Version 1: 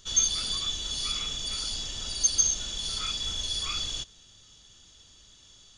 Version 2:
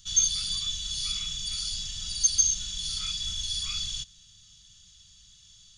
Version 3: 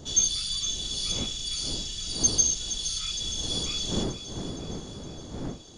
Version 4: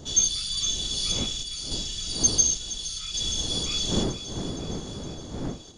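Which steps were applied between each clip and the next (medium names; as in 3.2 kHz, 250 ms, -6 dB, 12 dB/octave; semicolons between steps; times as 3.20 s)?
FFT filter 190 Hz 0 dB, 260 Hz -21 dB, 380 Hz -26 dB, 1.3 kHz -9 dB, 4.1 kHz +1 dB
wind noise 310 Hz -38 dBFS; thinning echo 465 ms, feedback 60%, level -12 dB
random-step tremolo; trim +4 dB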